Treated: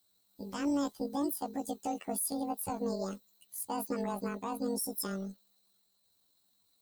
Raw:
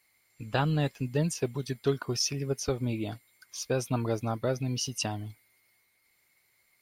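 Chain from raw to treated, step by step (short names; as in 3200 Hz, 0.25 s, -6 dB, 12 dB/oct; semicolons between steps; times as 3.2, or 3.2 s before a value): delay-line pitch shifter +11 st; limiter -23.5 dBFS, peak gain reduction 8.5 dB; bell 2200 Hz -10.5 dB 1.6 oct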